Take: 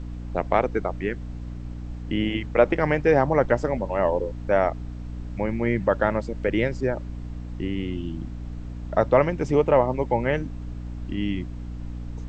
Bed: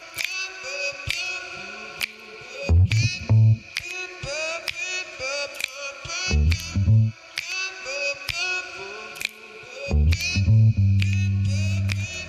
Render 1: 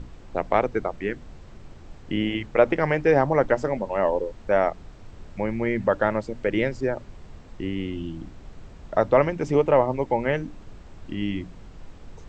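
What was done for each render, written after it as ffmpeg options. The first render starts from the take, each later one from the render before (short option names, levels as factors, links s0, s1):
-af "bandreject=f=60:t=h:w=6,bandreject=f=120:t=h:w=6,bandreject=f=180:t=h:w=6,bandreject=f=240:t=h:w=6,bandreject=f=300:t=h:w=6"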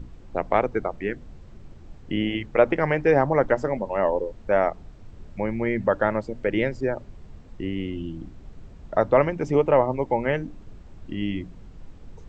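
-af "afftdn=nr=6:nf=-45"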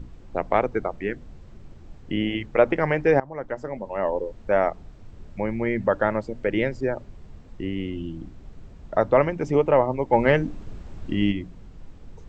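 -filter_complex "[0:a]asplit=3[s0][s1][s2];[s0]afade=t=out:st=10.12:d=0.02[s3];[s1]acontrast=52,afade=t=in:st=10.12:d=0.02,afade=t=out:st=11.31:d=0.02[s4];[s2]afade=t=in:st=11.31:d=0.02[s5];[s3][s4][s5]amix=inputs=3:normalize=0,asplit=2[s6][s7];[s6]atrim=end=3.2,asetpts=PTS-STARTPTS,afade=t=out:st=3.196:d=0.004:c=hsin:silence=0.0944061[s8];[s7]atrim=start=3.2,asetpts=PTS-STARTPTS,afade=t=in:d=1.19:silence=0.0944061[s9];[s8][s9]concat=n=2:v=0:a=1"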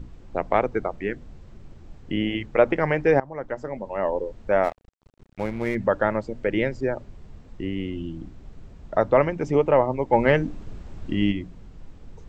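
-filter_complex "[0:a]asplit=3[s0][s1][s2];[s0]afade=t=out:st=4.63:d=0.02[s3];[s1]aeval=exprs='sgn(val(0))*max(abs(val(0))-0.0141,0)':c=same,afade=t=in:st=4.63:d=0.02,afade=t=out:st=5.74:d=0.02[s4];[s2]afade=t=in:st=5.74:d=0.02[s5];[s3][s4][s5]amix=inputs=3:normalize=0"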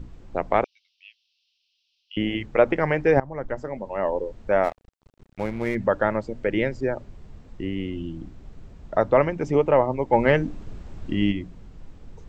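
-filter_complex "[0:a]asettb=1/sr,asplit=3[s0][s1][s2];[s0]atrim=end=0.644[s3];[s1]atrim=start=0.64:end=2.17,asetpts=PTS-STARTPTS,afade=t=in:d=0.004:c=qsin,afade=t=out:st=1.526:d=0.004:c=qsin,asuperpass=centerf=3900:order=12:qfactor=1.3[s4];[s2]atrim=start=2.166[s5];[s3][s4]acrossfade=d=0.004:c1=hsin:c2=qsin[s6];[s6][s5]acrossfade=d=0.004:c1=qsin:c2=hsin,asettb=1/sr,asplit=3[s7][s8][s9];[s7]atrim=end=3.174[s10];[s8]atrim=start=3.17:end=3.6,asetpts=PTS-STARTPTS,afade=t=in:d=0.004:c=qsin,afade=t=out:st=0.426:d=0.004:c=qsin,lowshelf=f=120:g=11[s11];[s9]atrim=start=3.596[s12];[s10][s11]acrossfade=d=0.004:c1=hsin:c2=qsin[s13];[s13][s12]acrossfade=d=0.004:c1=qsin:c2=hsin"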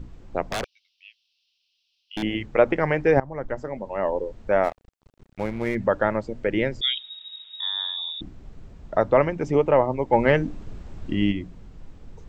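-filter_complex "[0:a]asettb=1/sr,asplit=3[s0][s1][s2];[s0]atrim=end=0.524[s3];[s1]atrim=start=0.52:end=2.23,asetpts=PTS-STARTPTS,afade=t=in:d=0.004:c=qsin,afade=t=out:st=1.706:d=0.004:c=qsin,aeval=exprs='0.0891*(abs(mod(val(0)/0.0891+3,4)-2)-1)':c=same[s4];[s2]atrim=start=2.226[s5];[s3][s4]acrossfade=d=0.004:c1=hsin:c2=qsin[s6];[s6][s5]acrossfade=d=0.004:c1=qsin:c2=hsin,asettb=1/sr,asplit=3[s7][s8][s9];[s7]atrim=end=6.814[s10];[s8]atrim=start=6.81:end=8.21,asetpts=PTS-STARTPTS,afade=t=in:d=0.004:c=qsin,afade=t=out:st=1.396:d=0.004:c=qsin,lowpass=f=3200:t=q:w=0.5098,lowpass=f=3200:t=q:w=0.6013,lowpass=f=3200:t=q:w=0.9,lowpass=f=3200:t=q:w=2.563,afreqshift=-3800[s11];[s9]atrim=start=8.206[s12];[s10][s11]acrossfade=d=0.004:c1=hsin:c2=qsin[s13];[s13][s12]acrossfade=d=0.004:c1=qsin:c2=hsin"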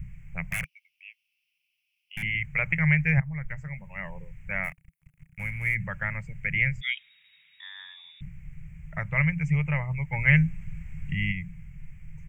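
-af "firequalizer=gain_entry='entry(100,0);entry(160,9);entry(240,-28);entry(390,-29);entry(580,-22);entry(1400,-9);entry(2200,11);entry(3800,-24);entry(6400,-7);entry(10000,7)':delay=0.05:min_phase=1"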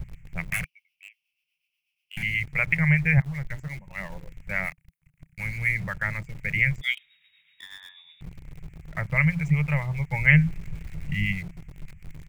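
-filter_complex "[0:a]acrossover=split=840[s0][s1];[s0]aeval=exprs='val(0)*(1-0.5/2+0.5/2*cos(2*PI*8.2*n/s))':c=same[s2];[s1]aeval=exprs='val(0)*(1-0.5/2-0.5/2*cos(2*PI*8.2*n/s))':c=same[s3];[s2][s3]amix=inputs=2:normalize=0,asplit=2[s4][s5];[s5]aeval=exprs='val(0)*gte(abs(val(0)),0.0106)':c=same,volume=0.631[s6];[s4][s6]amix=inputs=2:normalize=0"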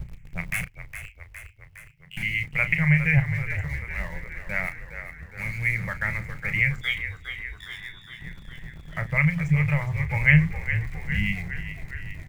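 -filter_complex "[0:a]asplit=2[s0][s1];[s1]adelay=34,volume=0.282[s2];[s0][s2]amix=inputs=2:normalize=0,asplit=9[s3][s4][s5][s6][s7][s8][s9][s10][s11];[s4]adelay=411,afreqshift=-42,volume=0.316[s12];[s5]adelay=822,afreqshift=-84,volume=0.202[s13];[s6]adelay=1233,afreqshift=-126,volume=0.129[s14];[s7]adelay=1644,afreqshift=-168,volume=0.0832[s15];[s8]adelay=2055,afreqshift=-210,volume=0.0531[s16];[s9]adelay=2466,afreqshift=-252,volume=0.0339[s17];[s10]adelay=2877,afreqshift=-294,volume=0.0216[s18];[s11]adelay=3288,afreqshift=-336,volume=0.014[s19];[s3][s12][s13][s14][s15][s16][s17][s18][s19]amix=inputs=9:normalize=0"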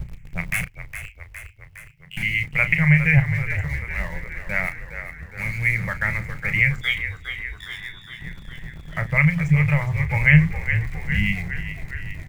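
-af "volume=1.58,alimiter=limit=0.708:level=0:latency=1"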